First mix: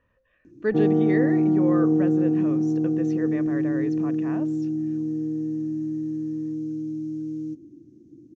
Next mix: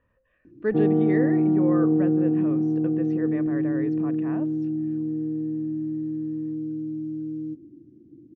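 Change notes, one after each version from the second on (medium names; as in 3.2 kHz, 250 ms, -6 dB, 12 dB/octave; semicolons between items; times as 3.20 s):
master: add distance through air 280 m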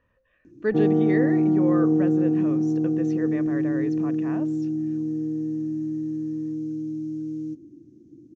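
master: remove distance through air 280 m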